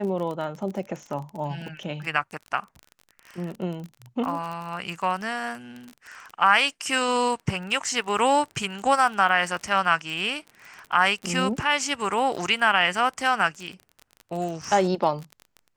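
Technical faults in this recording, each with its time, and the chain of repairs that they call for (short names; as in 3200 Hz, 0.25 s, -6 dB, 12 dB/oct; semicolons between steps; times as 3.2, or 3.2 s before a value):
crackle 31/s -31 dBFS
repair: de-click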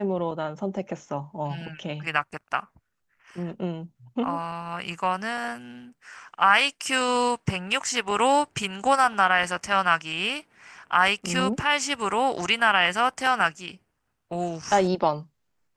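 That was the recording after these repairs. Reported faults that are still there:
none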